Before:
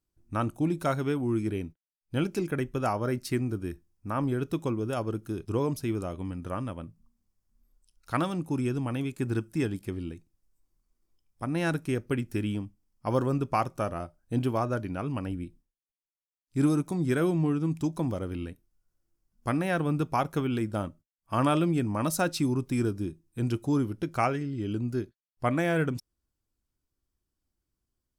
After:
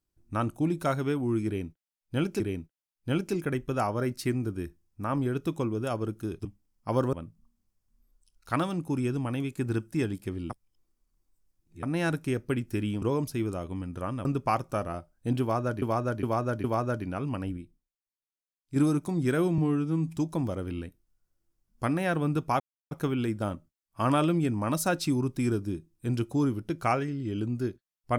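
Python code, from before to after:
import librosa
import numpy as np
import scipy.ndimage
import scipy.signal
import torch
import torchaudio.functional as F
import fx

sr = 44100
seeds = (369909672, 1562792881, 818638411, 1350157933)

y = fx.edit(x, sr, fx.repeat(start_s=1.46, length_s=0.94, count=2),
    fx.swap(start_s=5.51, length_s=1.23, other_s=12.63, other_length_s=0.68),
    fx.reverse_span(start_s=10.11, length_s=1.33),
    fx.repeat(start_s=14.47, length_s=0.41, count=4),
    fx.clip_gain(start_s=15.4, length_s=1.19, db=-5.0),
    fx.stretch_span(start_s=17.41, length_s=0.38, factor=1.5),
    fx.insert_silence(at_s=20.24, length_s=0.31), tone=tone)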